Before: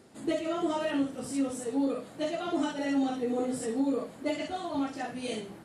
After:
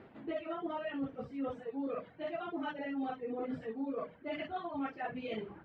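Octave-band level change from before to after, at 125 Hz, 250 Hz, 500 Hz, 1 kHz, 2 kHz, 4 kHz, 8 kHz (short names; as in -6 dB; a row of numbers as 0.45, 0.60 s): -5.5 dB, -9.5 dB, -7.0 dB, -4.5 dB, -4.5 dB, -11.0 dB, under -35 dB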